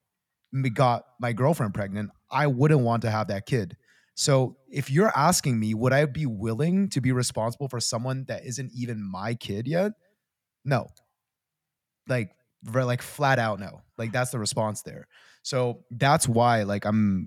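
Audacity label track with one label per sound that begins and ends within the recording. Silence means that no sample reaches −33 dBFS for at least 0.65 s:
10.660000	10.860000	sound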